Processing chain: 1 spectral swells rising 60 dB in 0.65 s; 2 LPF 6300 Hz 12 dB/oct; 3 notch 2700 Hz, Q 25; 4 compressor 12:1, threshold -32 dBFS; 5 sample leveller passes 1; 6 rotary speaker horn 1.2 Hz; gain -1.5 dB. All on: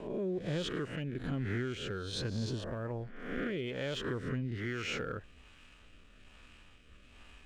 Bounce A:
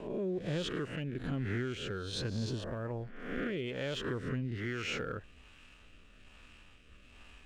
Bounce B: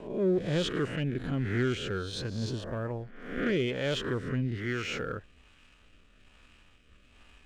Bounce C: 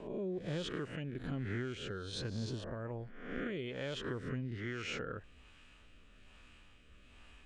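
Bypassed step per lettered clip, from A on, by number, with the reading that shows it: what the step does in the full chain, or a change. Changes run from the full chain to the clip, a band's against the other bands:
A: 3, momentary loudness spread change +2 LU; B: 4, mean gain reduction 3.0 dB; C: 5, crest factor change +2.0 dB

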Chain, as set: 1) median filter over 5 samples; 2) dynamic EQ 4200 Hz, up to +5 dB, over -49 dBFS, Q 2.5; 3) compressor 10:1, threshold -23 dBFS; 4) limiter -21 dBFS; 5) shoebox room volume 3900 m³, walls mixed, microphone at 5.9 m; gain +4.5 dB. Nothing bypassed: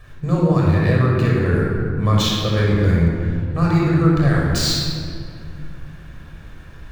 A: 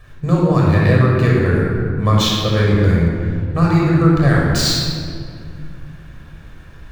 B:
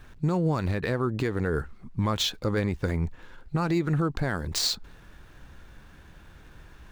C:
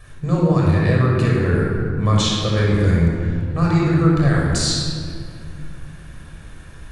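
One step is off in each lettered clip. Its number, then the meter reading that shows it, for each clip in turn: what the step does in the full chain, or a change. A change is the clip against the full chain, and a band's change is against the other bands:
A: 4, momentary loudness spread change -2 LU; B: 5, echo-to-direct 4.0 dB to none; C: 1, 8 kHz band +2.5 dB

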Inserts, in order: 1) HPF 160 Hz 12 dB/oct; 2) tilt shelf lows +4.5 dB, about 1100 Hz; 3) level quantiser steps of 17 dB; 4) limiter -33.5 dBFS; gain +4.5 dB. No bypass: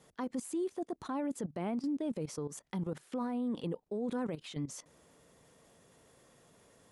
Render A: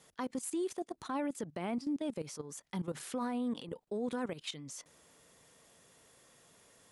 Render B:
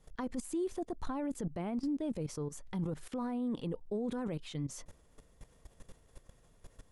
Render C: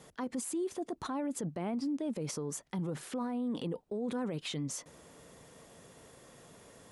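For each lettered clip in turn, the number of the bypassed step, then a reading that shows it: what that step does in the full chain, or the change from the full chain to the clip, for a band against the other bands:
2, 125 Hz band -6.5 dB; 1, 125 Hz band +3.0 dB; 3, momentary loudness spread change +15 LU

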